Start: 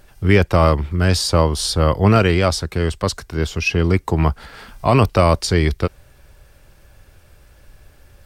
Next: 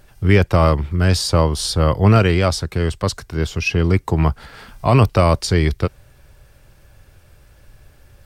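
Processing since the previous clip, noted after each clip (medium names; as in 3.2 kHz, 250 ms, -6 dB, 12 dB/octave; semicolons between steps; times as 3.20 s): peaking EQ 120 Hz +4.5 dB 0.77 oct; trim -1 dB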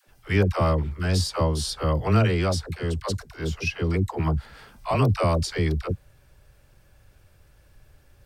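phase dispersion lows, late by 80 ms, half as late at 490 Hz; trim -7.5 dB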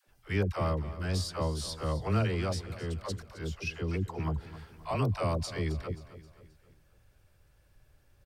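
feedback delay 265 ms, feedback 46%, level -15 dB; trim -8.5 dB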